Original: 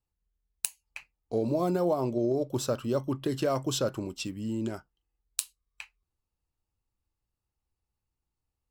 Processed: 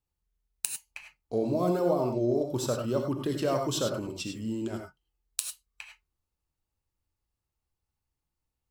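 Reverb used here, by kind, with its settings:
reverb whose tail is shaped and stops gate 120 ms rising, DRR 3.5 dB
level −1 dB

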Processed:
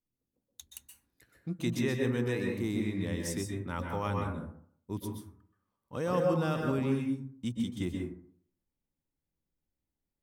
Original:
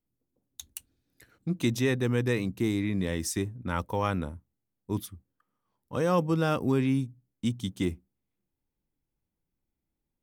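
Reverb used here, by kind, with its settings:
dense smooth reverb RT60 0.58 s, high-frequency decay 0.4×, pre-delay 115 ms, DRR 1 dB
level −6.5 dB

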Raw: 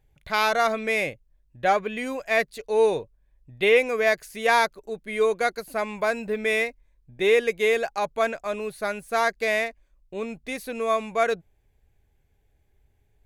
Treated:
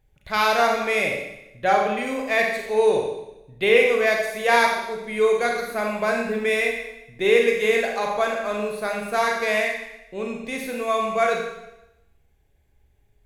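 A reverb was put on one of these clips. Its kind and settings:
four-comb reverb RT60 0.9 s, combs from 30 ms, DRR 0 dB

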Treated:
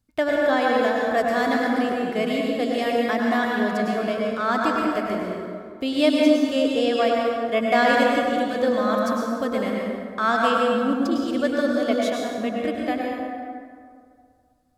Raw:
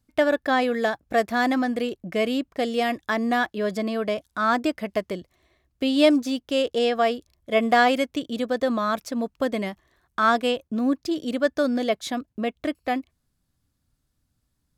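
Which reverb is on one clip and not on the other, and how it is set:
dense smooth reverb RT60 2.2 s, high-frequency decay 0.5×, pre-delay 90 ms, DRR −2.5 dB
level −2.5 dB

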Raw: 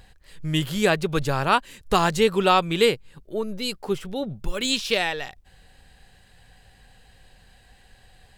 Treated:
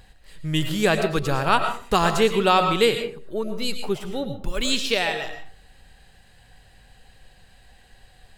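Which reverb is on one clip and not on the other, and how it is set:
comb and all-pass reverb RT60 0.45 s, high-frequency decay 0.5×, pre-delay 70 ms, DRR 6.5 dB

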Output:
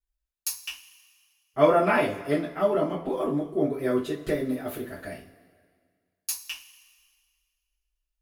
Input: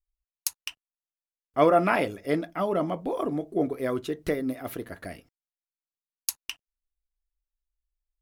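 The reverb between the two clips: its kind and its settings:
coupled-rooms reverb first 0.26 s, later 1.9 s, from −20 dB, DRR −8.5 dB
level −8 dB

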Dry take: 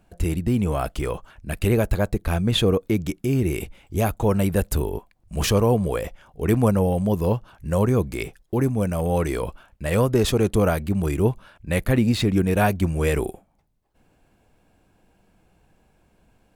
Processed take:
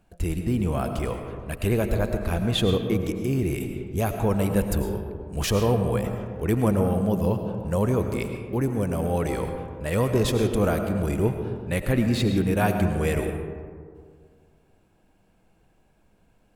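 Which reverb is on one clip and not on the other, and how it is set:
comb and all-pass reverb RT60 2 s, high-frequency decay 0.35×, pre-delay 65 ms, DRR 5.5 dB
level −3.5 dB

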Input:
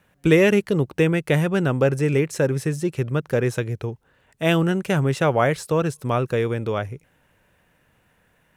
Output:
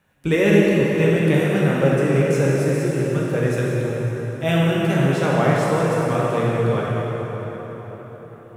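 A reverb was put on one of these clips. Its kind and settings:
dense smooth reverb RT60 4.9 s, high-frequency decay 0.65×, DRR −6 dB
level −5 dB

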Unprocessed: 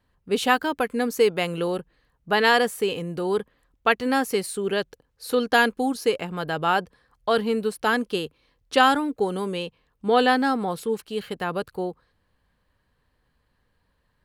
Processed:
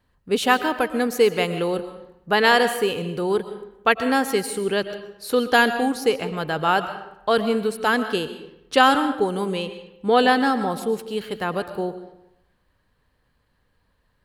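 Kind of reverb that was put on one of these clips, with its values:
comb and all-pass reverb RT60 0.85 s, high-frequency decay 0.7×, pre-delay 80 ms, DRR 10.5 dB
level +2 dB

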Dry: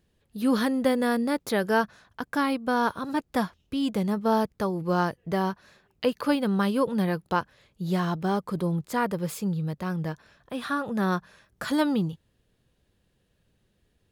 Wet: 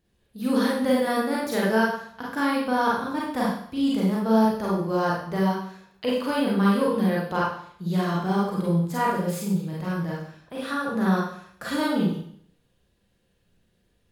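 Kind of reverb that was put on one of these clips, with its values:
four-comb reverb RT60 0.61 s, combs from 32 ms, DRR −5.5 dB
level −4.5 dB

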